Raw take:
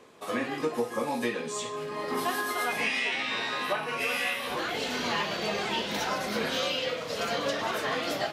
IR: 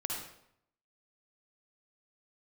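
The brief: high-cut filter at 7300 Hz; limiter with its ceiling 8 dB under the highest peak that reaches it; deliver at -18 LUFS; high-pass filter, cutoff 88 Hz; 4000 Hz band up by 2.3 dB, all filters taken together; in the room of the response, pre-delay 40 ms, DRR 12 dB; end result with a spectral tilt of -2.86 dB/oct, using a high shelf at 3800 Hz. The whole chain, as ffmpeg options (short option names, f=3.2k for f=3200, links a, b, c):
-filter_complex "[0:a]highpass=88,lowpass=7.3k,highshelf=f=3.8k:g=-3,equalizer=f=4k:t=o:g=5,alimiter=limit=-24dB:level=0:latency=1,asplit=2[a][b];[1:a]atrim=start_sample=2205,adelay=40[c];[b][c]afir=irnorm=-1:irlink=0,volume=-14.5dB[d];[a][d]amix=inputs=2:normalize=0,volume=14dB"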